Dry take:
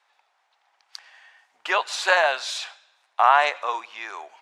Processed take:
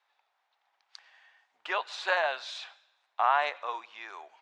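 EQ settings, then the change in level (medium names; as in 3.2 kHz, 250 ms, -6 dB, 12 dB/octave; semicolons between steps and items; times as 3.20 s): peaking EQ 3.7 kHz +3 dB 0.3 oct; dynamic bell 8.4 kHz, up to -5 dB, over -42 dBFS, Q 0.81; distance through air 65 m; -8.0 dB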